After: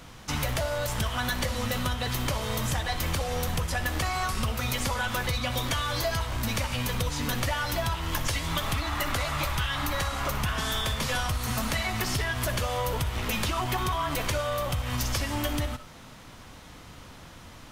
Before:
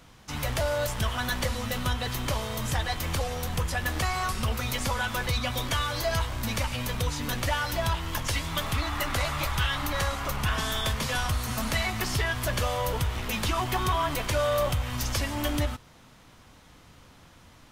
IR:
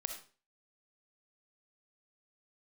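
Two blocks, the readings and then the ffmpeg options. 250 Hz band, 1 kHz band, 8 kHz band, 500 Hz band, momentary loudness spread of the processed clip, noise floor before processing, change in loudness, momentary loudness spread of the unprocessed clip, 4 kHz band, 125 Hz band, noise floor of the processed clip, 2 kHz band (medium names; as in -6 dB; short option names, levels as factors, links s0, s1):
+0.5 dB, -0.5 dB, +0.5 dB, -1.5 dB, 7 LU, -54 dBFS, 0.0 dB, 3 LU, 0.0 dB, 0.0 dB, -47 dBFS, -0.5 dB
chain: -filter_complex "[0:a]acompressor=threshold=0.0251:ratio=6,asplit=2[s0][s1];[1:a]atrim=start_sample=2205[s2];[s1][s2]afir=irnorm=-1:irlink=0,volume=1.26[s3];[s0][s3]amix=inputs=2:normalize=0"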